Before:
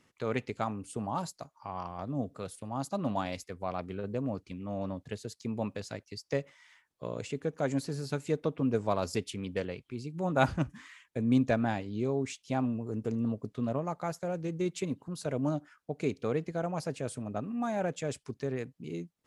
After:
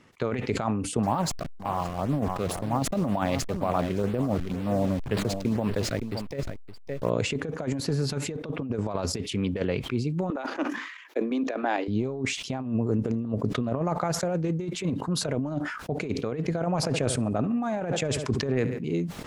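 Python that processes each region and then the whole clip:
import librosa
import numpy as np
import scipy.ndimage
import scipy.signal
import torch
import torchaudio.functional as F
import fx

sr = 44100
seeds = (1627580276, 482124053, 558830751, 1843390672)

y = fx.chain(x, sr, fx.delta_hold(step_db=-44.0),
    fx.filter_lfo_notch(shape='sine', hz=2.0, low_hz=840.0, high_hz=6700.0, q=1.9),
    fx.echo_single(ms=566, db=-13.5), at=(1.03, 7.1))
y = fx.chain(y, sr, fx.steep_highpass(hz=280.0, slope=48),
    fx.peak_eq(hz=8600.0, db=-13.5, octaves=0.36),
    fx.level_steps(step_db=9), at=(10.3, 11.88))
y = fx.chain(y, sr, fx.echo_feedback(ms=70, feedback_pct=46, wet_db=-20.0),
    fx.sustainer(db_per_s=100.0), at=(16.76, 18.93))
y = fx.over_compress(y, sr, threshold_db=-34.0, ratio=-0.5)
y = fx.lowpass(y, sr, hz=3200.0, slope=6)
y = fx.sustainer(y, sr, db_per_s=57.0)
y = y * librosa.db_to_amplitude(8.0)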